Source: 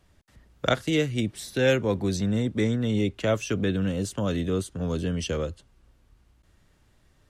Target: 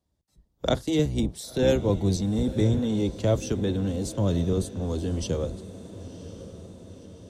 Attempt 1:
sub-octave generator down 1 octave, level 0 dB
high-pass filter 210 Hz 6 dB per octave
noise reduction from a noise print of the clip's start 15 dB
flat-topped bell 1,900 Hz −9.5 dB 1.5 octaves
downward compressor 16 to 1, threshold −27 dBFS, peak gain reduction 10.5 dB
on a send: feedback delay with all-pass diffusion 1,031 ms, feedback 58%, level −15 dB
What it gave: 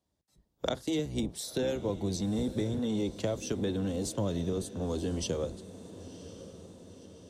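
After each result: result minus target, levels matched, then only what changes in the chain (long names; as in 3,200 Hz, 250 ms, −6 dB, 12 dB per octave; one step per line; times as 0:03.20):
downward compressor: peak gain reduction +10.5 dB; 125 Hz band −3.0 dB
remove: downward compressor 16 to 1, threshold −27 dBFS, peak gain reduction 10.5 dB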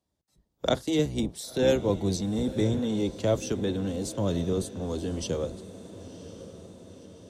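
125 Hz band −3.0 dB
change: high-pass filter 57 Hz 6 dB per octave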